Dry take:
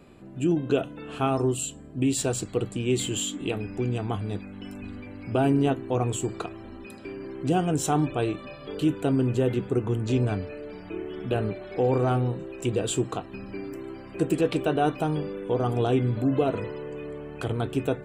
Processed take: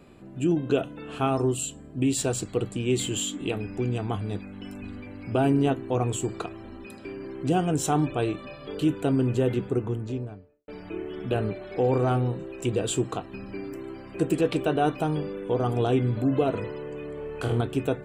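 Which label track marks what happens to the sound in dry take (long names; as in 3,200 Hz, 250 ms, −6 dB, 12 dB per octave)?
9.520000	10.680000	fade out and dull
17.150000	17.610000	flutter between parallel walls apart 4.3 metres, dies away in 0.34 s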